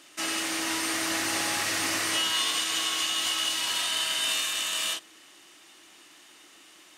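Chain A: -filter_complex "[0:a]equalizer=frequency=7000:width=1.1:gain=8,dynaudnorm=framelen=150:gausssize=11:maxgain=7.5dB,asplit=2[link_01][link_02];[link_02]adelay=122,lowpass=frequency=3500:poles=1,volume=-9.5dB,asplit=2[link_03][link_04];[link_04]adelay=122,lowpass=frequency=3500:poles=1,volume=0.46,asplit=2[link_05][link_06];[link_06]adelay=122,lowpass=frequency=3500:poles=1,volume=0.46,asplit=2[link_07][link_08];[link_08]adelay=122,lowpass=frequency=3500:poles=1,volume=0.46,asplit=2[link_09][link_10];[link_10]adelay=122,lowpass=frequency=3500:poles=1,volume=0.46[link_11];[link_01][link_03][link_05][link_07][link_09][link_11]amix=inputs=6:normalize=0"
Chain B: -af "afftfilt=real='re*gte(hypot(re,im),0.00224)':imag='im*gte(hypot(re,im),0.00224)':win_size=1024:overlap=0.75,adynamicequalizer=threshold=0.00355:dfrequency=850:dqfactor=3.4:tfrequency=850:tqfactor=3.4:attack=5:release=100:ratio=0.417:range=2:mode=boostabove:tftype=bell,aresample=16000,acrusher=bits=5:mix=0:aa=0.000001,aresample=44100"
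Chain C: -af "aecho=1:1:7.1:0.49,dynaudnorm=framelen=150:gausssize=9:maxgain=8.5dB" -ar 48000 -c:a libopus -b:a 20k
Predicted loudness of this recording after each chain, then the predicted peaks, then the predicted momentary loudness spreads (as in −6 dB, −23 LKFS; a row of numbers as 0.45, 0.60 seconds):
−15.5, −26.5, −17.0 LKFS; −3.5, −14.0, −5.0 dBFS; 9, 3, 7 LU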